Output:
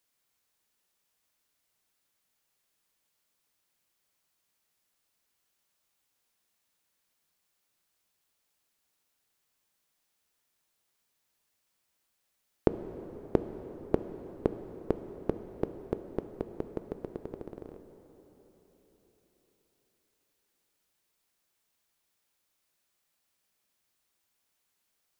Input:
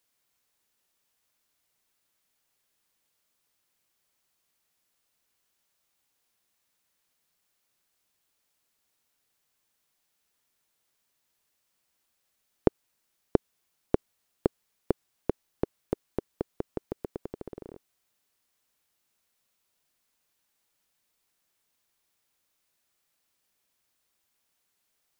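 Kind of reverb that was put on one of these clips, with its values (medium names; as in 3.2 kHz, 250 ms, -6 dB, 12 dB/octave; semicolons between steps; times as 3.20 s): plate-style reverb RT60 4.5 s, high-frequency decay 0.75×, DRR 8.5 dB; trim -2 dB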